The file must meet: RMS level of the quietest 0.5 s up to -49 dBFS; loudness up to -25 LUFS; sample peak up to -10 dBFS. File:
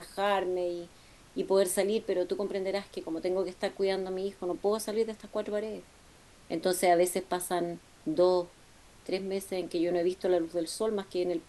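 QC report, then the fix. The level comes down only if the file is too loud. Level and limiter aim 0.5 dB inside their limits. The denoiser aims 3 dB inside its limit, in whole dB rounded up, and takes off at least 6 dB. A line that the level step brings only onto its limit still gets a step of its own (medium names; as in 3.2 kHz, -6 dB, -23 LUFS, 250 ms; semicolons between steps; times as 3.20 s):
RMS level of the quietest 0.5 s -57 dBFS: pass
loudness -31.0 LUFS: pass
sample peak -13.5 dBFS: pass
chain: none needed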